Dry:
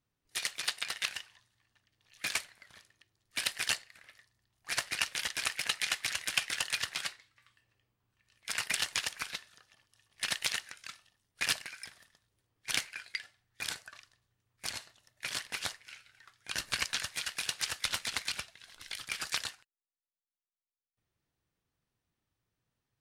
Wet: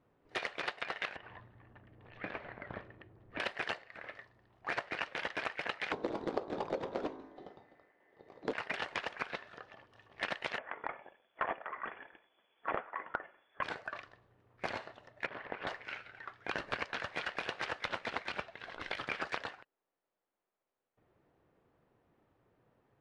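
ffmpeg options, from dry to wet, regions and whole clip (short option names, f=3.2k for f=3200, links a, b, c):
-filter_complex "[0:a]asettb=1/sr,asplit=3[a][b][c];[a]atrim=end=1.164[d];[b]atrim=start=1.16:end=3.4,asetpts=PTS-STARTPTS,afade=t=in:d=0.004:c=qsin,afade=t=out:st=2.236:d=0.004:c=qsin,lowpass=2.7k,lowshelf=f=310:g=12,acompressor=threshold=-49dB:ratio=6:attack=3.2:release=140:knee=1:detection=peak[e];[c]atrim=start=3.396[f];[d][e]acrossfade=d=0.004:c1=hsin:c2=qsin[g];[g][f]acrossfade=d=0.004:c1=qsin:c2=hsin,asettb=1/sr,asplit=3[h][i][j];[h]atrim=end=5.924[k];[i]atrim=start=5.92:end=8.53,asetpts=PTS-STARTPTS,afade=t=in:d=0.004:c=qsin,afade=t=out:st=2.606:d=0.004:c=qsin,aeval=exprs='val(0)*sin(2*PI*1900*n/s)':c=same,equalizer=f=350:w=0.7:g=9.5,bandreject=f=53.52:t=h:w=4,bandreject=f=107.04:t=h:w=4,bandreject=f=160.56:t=h:w=4,bandreject=f=214.08:t=h:w=4,bandreject=f=267.6:t=h:w=4,bandreject=f=321.12:t=h:w=4,bandreject=f=374.64:t=h:w=4,bandreject=f=428.16:t=h:w=4,bandreject=f=481.68:t=h:w=4,bandreject=f=535.2:t=h:w=4,bandreject=f=588.72:t=h:w=4,bandreject=f=642.24:t=h:w=4,bandreject=f=695.76:t=h:w=4,bandreject=f=749.28:t=h:w=4,bandreject=f=802.8:t=h:w=4,bandreject=f=856.32:t=h:w=4,bandreject=f=909.84:t=h:w=4,bandreject=f=963.36:t=h:w=4,bandreject=f=1.01688k:t=h:w=4,bandreject=f=1.0704k:t=h:w=4,bandreject=f=1.12392k:t=h:w=4,bandreject=f=1.17744k:t=h:w=4,bandreject=f=1.23096k:t=h:w=4,bandreject=f=1.28448k:t=h:w=4,bandreject=f=1.338k:t=h:w=4,bandreject=f=1.39152k:t=h:w=4,bandreject=f=1.44504k:t=h:w=4,bandreject=f=1.49856k:t=h:w=4,bandreject=f=1.55208k:t=h:w=4,bandreject=f=1.6056k:t=h:w=4,bandreject=f=1.65912k:t=h:w=4[l];[j]atrim=start=8.526[m];[k][l]acrossfade=d=0.004:c1=hsin:c2=qsin[n];[n][m]acrossfade=d=0.004:c1=qsin:c2=hsin,asettb=1/sr,asplit=3[o][p][q];[o]atrim=end=10.584[r];[p]atrim=start=10.58:end=13.63,asetpts=PTS-STARTPTS,afade=t=in:d=0.004:c=qsin,afade=t=out:st=3.046:d=0.004:c=qsin,equalizer=f=1.1k:w=4.8:g=5.5,lowpass=f=3k:t=q:w=0.5098,lowpass=f=3k:t=q:w=0.6013,lowpass=f=3k:t=q:w=0.9,lowpass=f=3k:t=q:w=2.563,afreqshift=-3500[s];[q]atrim=start=13.626[t];[r][s]acrossfade=d=0.004:c1=hsin:c2=qsin[u];[u][t]acrossfade=d=0.004:c1=qsin:c2=hsin,asettb=1/sr,asplit=3[v][w][x];[v]atrim=end=15.264[y];[w]atrim=start=15.26:end=15.67,asetpts=PTS-STARTPTS,afade=t=in:d=0.004:c=qsin,afade=t=out:st=0.406:d=0.004:c=qsin,lowpass=2.2k,acompressor=threshold=-48dB:ratio=12:attack=3.2:release=140:knee=1:detection=peak[z];[x]atrim=start=15.666[aa];[y][z]acrossfade=d=0.004:c1=hsin:c2=qsin[ab];[ab][aa]acrossfade=d=0.004:c1=qsin:c2=hsin,lowpass=2.4k,equalizer=f=510:w=0.44:g=15,acompressor=threshold=-40dB:ratio=6,volume=5.5dB"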